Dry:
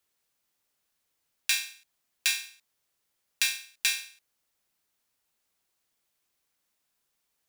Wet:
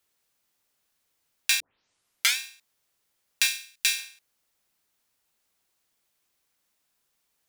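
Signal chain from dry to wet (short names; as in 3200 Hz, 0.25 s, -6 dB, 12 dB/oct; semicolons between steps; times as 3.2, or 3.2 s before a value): 1.6 tape start 0.77 s; 3.47–3.99 bell 500 Hz -8 dB 2.6 oct; gain +3 dB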